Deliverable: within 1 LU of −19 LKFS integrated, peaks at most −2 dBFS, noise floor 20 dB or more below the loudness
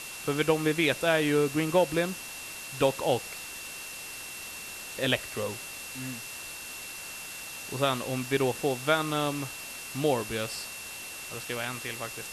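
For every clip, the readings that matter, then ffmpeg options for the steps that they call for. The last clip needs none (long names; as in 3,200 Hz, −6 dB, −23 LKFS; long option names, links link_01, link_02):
interfering tone 2,700 Hz; level of the tone −43 dBFS; background noise floor −41 dBFS; target noise floor −50 dBFS; integrated loudness −30.0 LKFS; sample peak −9.5 dBFS; target loudness −19.0 LKFS
→ -af "bandreject=frequency=2700:width=30"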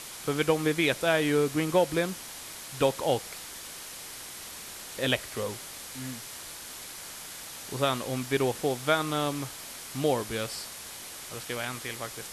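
interfering tone none found; background noise floor −43 dBFS; target noise floor −51 dBFS
→ -af "afftdn=noise_reduction=8:noise_floor=-43"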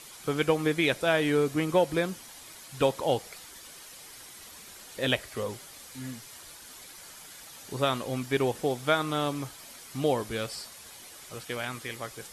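background noise floor −48 dBFS; target noise floor −49 dBFS
→ -af "afftdn=noise_reduction=6:noise_floor=-48"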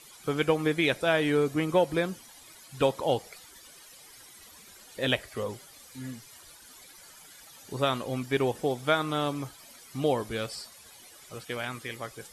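background noise floor −52 dBFS; integrated loudness −29.0 LKFS; sample peak −10.0 dBFS; target loudness −19.0 LKFS
→ -af "volume=10dB,alimiter=limit=-2dB:level=0:latency=1"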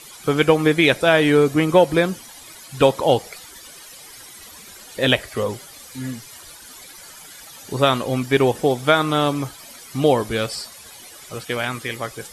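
integrated loudness −19.0 LKFS; sample peak −2.0 dBFS; background noise floor −42 dBFS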